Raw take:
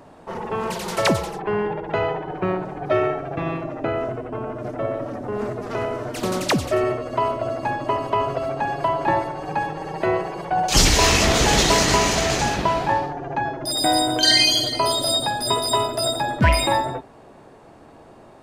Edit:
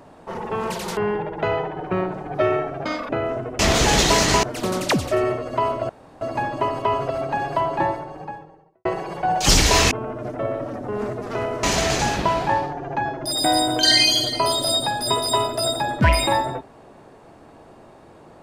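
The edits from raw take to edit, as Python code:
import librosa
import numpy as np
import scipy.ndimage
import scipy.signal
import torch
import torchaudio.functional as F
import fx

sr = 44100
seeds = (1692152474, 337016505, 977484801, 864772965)

y = fx.studio_fade_out(x, sr, start_s=8.81, length_s=1.32)
y = fx.edit(y, sr, fx.cut(start_s=0.97, length_s=0.51),
    fx.speed_span(start_s=3.36, length_s=0.45, speed=1.86),
    fx.swap(start_s=4.31, length_s=1.72, other_s=11.19, other_length_s=0.84),
    fx.insert_room_tone(at_s=7.49, length_s=0.32), tone=tone)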